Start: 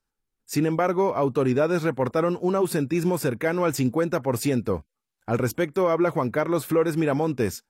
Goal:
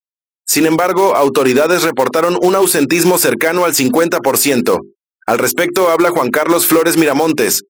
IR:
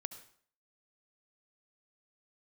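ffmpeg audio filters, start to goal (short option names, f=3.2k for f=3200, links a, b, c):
-af "highpass=270,lowshelf=f=390:g=-6,acompressor=threshold=-27dB:ratio=10,highshelf=f=3.9k:g=7,bandreject=f=50:t=h:w=6,bandreject=f=100:t=h:w=6,bandreject=f=150:t=h:w=6,bandreject=f=200:t=h:w=6,bandreject=f=250:t=h:w=6,bandreject=f=300:t=h:w=6,bandreject=f=350:t=h:w=6,bandreject=f=400:t=h:w=6,acrusher=bits=4:mode=log:mix=0:aa=0.000001,afftfilt=real='re*gte(hypot(re,im),0.00178)':imag='im*gte(hypot(re,im),0.00178)':win_size=1024:overlap=0.75,alimiter=level_in=25.5dB:limit=-1dB:release=50:level=0:latency=1,volume=-1dB"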